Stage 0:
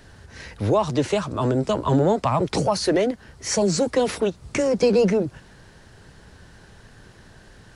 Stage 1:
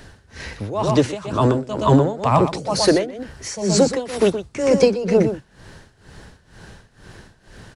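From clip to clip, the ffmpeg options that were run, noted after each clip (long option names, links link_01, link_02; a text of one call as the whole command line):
ffmpeg -i in.wav -af "aecho=1:1:122:0.376,tremolo=f=2.1:d=0.86,volume=6.5dB" out.wav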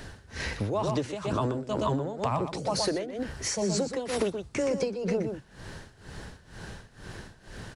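ffmpeg -i in.wav -af "acompressor=threshold=-25dB:ratio=12" out.wav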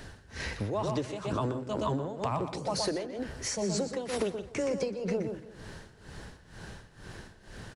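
ffmpeg -i in.wav -filter_complex "[0:a]asplit=2[link_01][link_02];[link_02]adelay=170,lowpass=frequency=3600:poles=1,volume=-16.5dB,asplit=2[link_03][link_04];[link_04]adelay=170,lowpass=frequency=3600:poles=1,volume=0.53,asplit=2[link_05][link_06];[link_06]adelay=170,lowpass=frequency=3600:poles=1,volume=0.53,asplit=2[link_07][link_08];[link_08]adelay=170,lowpass=frequency=3600:poles=1,volume=0.53,asplit=2[link_09][link_10];[link_10]adelay=170,lowpass=frequency=3600:poles=1,volume=0.53[link_11];[link_01][link_03][link_05][link_07][link_09][link_11]amix=inputs=6:normalize=0,volume=-3dB" out.wav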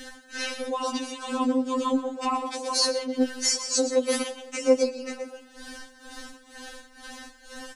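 ffmpeg -i in.wav -af "bass=frequency=250:gain=-3,treble=frequency=4000:gain=5,afftfilt=real='re*3.46*eq(mod(b,12),0)':imag='im*3.46*eq(mod(b,12),0)':win_size=2048:overlap=0.75,volume=8.5dB" out.wav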